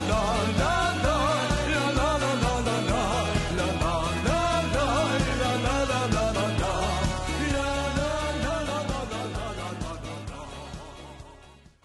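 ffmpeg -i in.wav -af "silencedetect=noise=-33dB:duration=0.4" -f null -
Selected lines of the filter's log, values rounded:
silence_start: 11.21
silence_end: 11.85 | silence_duration: 0.64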